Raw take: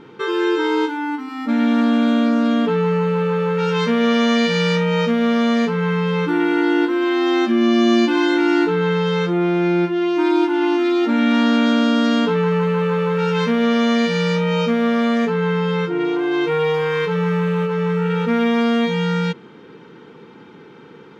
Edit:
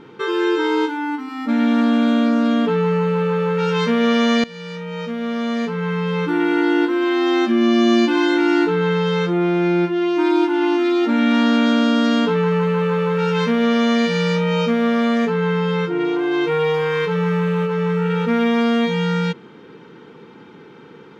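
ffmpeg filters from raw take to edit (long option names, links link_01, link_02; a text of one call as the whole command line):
ffmpeg -i in.wav -filter_complex "[0:a]asplit=2[link_01][link_02];[link_01]atrim=end=4.44,asetpts=PTS-STARTPTS,afade=type=out:start_time=4.436:duration=0.004:curve=hsin:silence=0.1[link_03];[link_02]atrim=start=4.44,asetpts=PTS-STARTPTS,afade=type=in:duration=2.09:silence=0.1[link_04];[link_03][link_04]concat=n=2:v=0:a=1" out.wav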